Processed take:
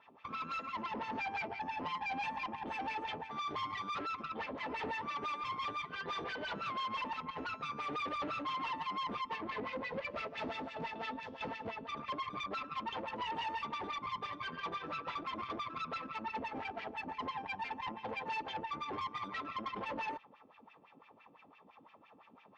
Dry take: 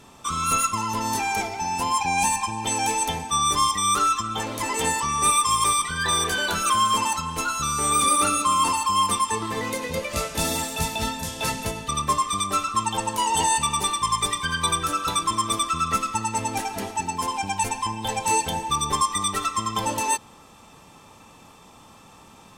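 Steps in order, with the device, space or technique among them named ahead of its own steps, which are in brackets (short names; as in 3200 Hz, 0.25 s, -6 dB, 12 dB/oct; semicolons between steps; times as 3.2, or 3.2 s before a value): wah-wah guitar rig (wah 5.9 Hz 270–2500 Hz, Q 2.9; tube stage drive 37 dB, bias 0.75; speaker cabinet 80–4200 Hz, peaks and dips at 340 Hz -5 dB, 1500 Hz -4 dB, 3800 Hz -3 dB); gain +2.5 dB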